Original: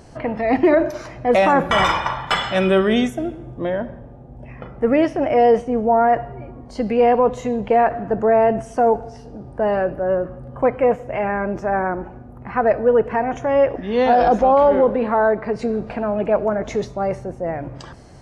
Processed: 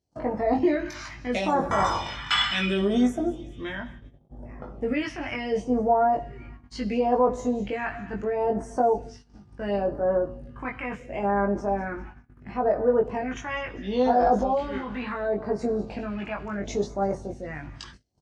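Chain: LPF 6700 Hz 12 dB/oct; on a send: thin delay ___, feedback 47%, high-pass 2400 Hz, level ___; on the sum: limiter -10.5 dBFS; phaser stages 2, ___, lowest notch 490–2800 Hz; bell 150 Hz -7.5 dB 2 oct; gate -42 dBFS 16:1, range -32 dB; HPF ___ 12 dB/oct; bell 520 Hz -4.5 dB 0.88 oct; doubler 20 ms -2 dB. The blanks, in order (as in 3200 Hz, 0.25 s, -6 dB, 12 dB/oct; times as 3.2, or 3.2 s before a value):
0.2 s, -17 dB, 0.72 Hz, 57 Hz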